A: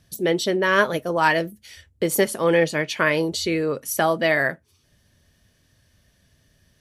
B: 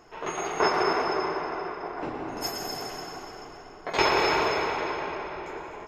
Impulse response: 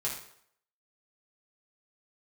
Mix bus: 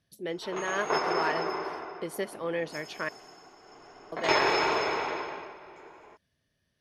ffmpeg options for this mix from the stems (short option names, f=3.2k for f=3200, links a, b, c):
-filter_complex "[0:a]equalizer=f=7.4k:t=o:w=0.64:g=-9.5,volume=-13dB,asplit=3[a][b][c];[a]atrim=end=3.09,asetpts=PTS-STARTPTS,afade=t=out:st=3.086:d=0.004:c=hsin[d];[b]atrim=start=3.09:end=4.12,asetpts=PTS-STARTPTS,volume=0[e];[c]atrim=start=4.12,asetpts=PTS-STARTPTS,afade=t=in:d=0.004:c=hsin[f];[d][e][f]concat=n=3:v=0:a=1[g];[1:a]adelay=300,volume=7.5dB,afade=t=out:st=1.63:d=0.5:silence=0.334965,afade=t=in:st=3.59:d=0.62:silence=0.266073,afade=t=out:st=5.05:d=0.51:silence=0.316228[h];[g][h]amix=inputs=2:normalize=0,lowpass=f=11k:w=0.5412,lowpass=f=11k:w=1.3066,lowshelf=f=94:g=-11"